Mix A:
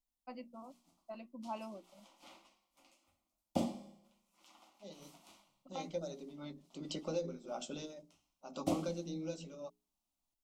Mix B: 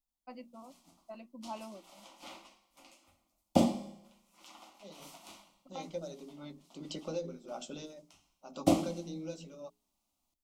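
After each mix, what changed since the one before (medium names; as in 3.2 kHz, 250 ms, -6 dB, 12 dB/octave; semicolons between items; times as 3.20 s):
background +9.0 dB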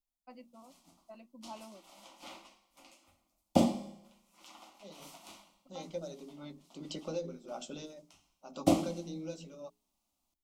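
first voice -4.5 dB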